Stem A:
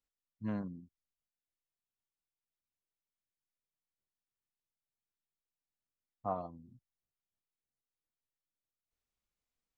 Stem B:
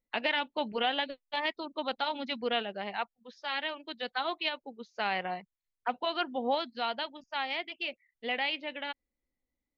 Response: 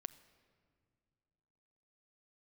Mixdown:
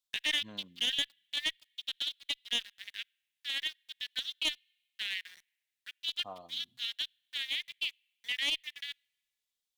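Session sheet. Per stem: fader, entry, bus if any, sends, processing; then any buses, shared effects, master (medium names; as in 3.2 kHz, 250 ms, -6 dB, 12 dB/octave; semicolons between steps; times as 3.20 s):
-9.5 dB, 0.00 s, send -22 dB, tone controls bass -7 dB, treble +14 dB
-4.5 dB, 0.00 s, send -15.5 dB, local Wiener filter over 15 samples; steep high-pass 1.7 kHz 72 dB/octave; bit crusher 9-bit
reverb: on, RT60 2.3 s, pre-delay 7 ms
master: peaking EQ 3.5 kHz +13.5 dB 0.65 oct; one-sided clip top -25 dBFS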